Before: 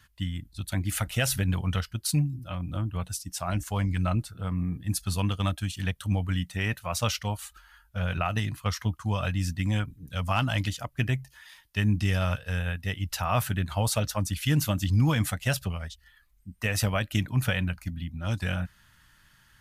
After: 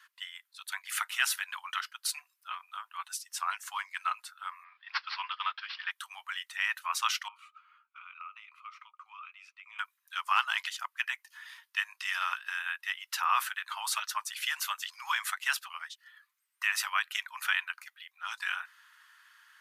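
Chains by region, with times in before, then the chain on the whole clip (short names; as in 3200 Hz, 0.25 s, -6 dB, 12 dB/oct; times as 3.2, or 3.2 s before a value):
4.64–5.91 notch comb 280 Hz + careless resampling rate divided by 4×, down none, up filtered + Doppler distortion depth 0.13 ms
7.28–9.79 double band-pass 1700 Hz, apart 0.9 oct + compressor 3:1, threshold -49 dBFS
whole clip: steep high-pass 1000 Hz 48 dB/oct; high shelf 2700 Hz -10 dB; gain +6 dB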